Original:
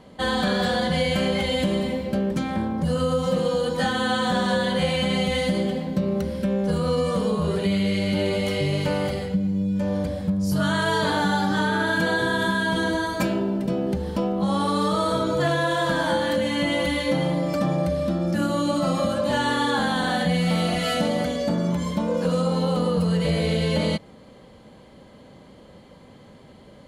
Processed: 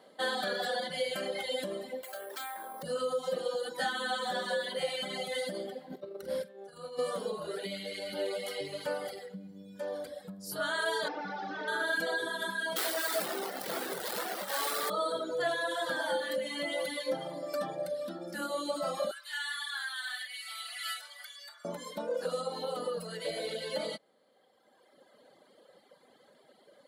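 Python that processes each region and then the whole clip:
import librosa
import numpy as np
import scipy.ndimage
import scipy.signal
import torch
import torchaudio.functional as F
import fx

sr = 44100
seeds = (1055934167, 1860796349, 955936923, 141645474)

y = fx.chain(x, sr, fx.highpass(hz=700.0, slope=12),
    fx.resample_bad(factor=4, down='none', up='hold'),
    fx.env_flatten(amount_pct=100), at=(2.03, 2.83))
y = fx.chain(y, sr, fx.low_shelf(hz=86.0, db=10.5),
    fx.over_compress(threshold_db=-26.0, ratio=-0.5),
    fx.doubler(ms=48.0, db=-8.0), at=(5.9, 6.99))
y = fx.chain(y, sr, fx.delta_mod(bps=32000, step_db=-40.5),
    fx.highpass(hz=120.0, slope=12), at=(11.08, 11.68))
y = fx.chain(y, sr, fx.clip_1bit(),
    fx.highpass(hz=83.0, slope=12),
    fx.doubler(ms=23.0, db=-5), at=(12.76, 14.9))
y = fx.chain(y, sr, fx.highpass(hz=1400.0, slope=24),
    fx.peak_eq(hz=6100.0, db=-3.5, octaves=0.69), at=(19.11, 21.65))
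y = scipy.signal.sosfilt(scipy.signal.butter(2, 620.0, 'highpass', fs=sr, output='sos'), y)
y = fx.dereverb_blind(y, sr, rt60_s=1.9)
y = fx.graphic_eq_15(y, sr, hz=(1000, 2500, 6300), db=(-9, -11, -9))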